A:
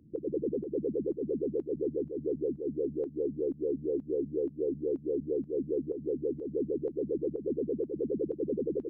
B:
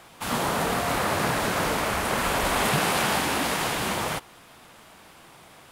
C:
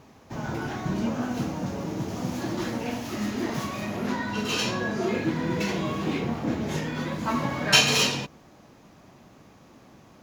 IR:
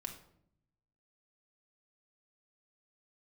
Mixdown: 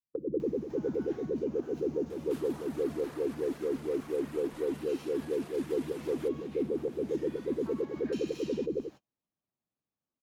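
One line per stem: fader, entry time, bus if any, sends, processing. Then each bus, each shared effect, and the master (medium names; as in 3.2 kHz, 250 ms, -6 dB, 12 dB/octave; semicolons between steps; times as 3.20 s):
-1.0 dB, 0.00 s, no bus, send -12 dB, no echo send, three bands expanded up and down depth 70%
-9.0 dB, 2.10 s, bus A, no send, no echo send, reverb removal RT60 0.58 s; compression, threshold -34 dBFS, peak gain reduction 12.5 dB; vibrato 5.6 Hz 88 cents
-17.0 dB, 0.40 s, bus A, no send, echo send -21.5 dB, compression 2:1, threshold -29 dBFS, peak gain reduction 9 dB
bus A: 0.0 dB, upward compressor, threshold -47 dBFS; peak limiter -40 dBFS, peak gain reduction 10 dB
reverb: on, RT60 0.70 s, pre-delay 4 ms
echo: feedback delay 418 ms, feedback 59%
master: gate -46 dBFS, range -37 dB; gain riding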